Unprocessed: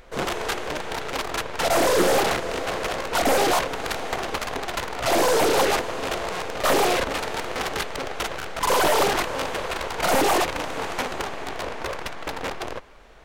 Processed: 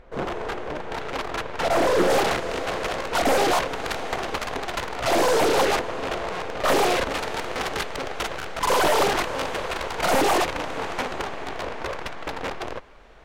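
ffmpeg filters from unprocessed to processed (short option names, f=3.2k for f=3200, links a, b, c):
-af "asetnsamples=n=441:p=0,asendcmd='0.92 lowpass f 2700;2.1 lowpass f 6900;5.79 lowpass f 3200;6.68 lowpass f 8500;10.52 lowpass f 4800',lowpass=f=1.2k:p=1"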